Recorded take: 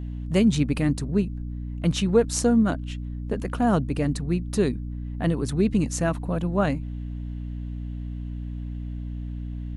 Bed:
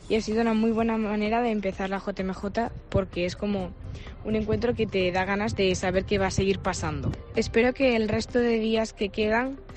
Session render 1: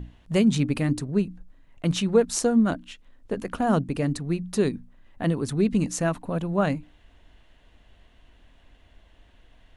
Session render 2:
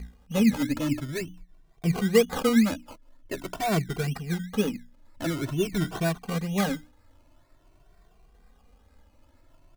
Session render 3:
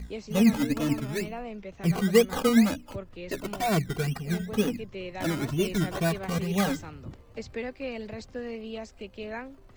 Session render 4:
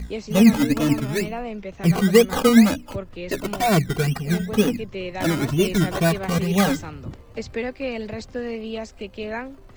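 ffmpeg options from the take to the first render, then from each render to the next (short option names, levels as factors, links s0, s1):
-af "bandreject=f=60:t=h:w=6,bandreject=f=120:t=h:w=6,bandreject=f=180:t=h:w=6,bandreject=f=240:t=h:w=6,bandreject=f=300:t=h:w=6"
-filter_complex "[0:a]acrusher=samples=20:mix=1:aa=0.000001:lfo=1:lforange=12:lforate=2.1,asplit=2[s0][s1];[s1]adelay=2.1,afreqshift=0.47[s2];[s0][s2]amix=inputs=2:normalize=1"
-filter_complex "[1:a]volume=0.224[s0];[0:a][s0]amix=inputs=2:normalize=0"
-af "volume=2.24,alimiter=limit=0.708:level=0:latency=1"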